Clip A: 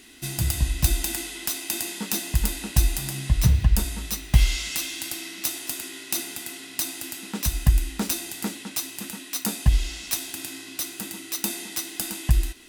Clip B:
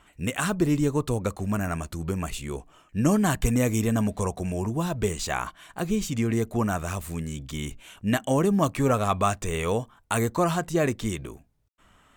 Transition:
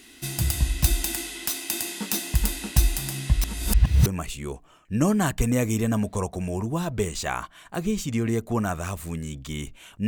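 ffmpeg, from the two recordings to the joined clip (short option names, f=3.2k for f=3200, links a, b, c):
-filter_complex "[0:a]apad=whole_dur=10.07,atrim=end=10.07,asplit=2[a][b];[a]atrim=end=3.442[c];[b]atrim=start=3.438:end=4.062,asetpts=PTS-STARTPTS,areverse[d];[1:a]atrim=start=2.098:end=8.11[e];[c][d]acrossfade=d=0.004:c1=hsin:c2=hsin[f];[f][e]acrossfade=d=0.004:c1=hsin:c2=hsin"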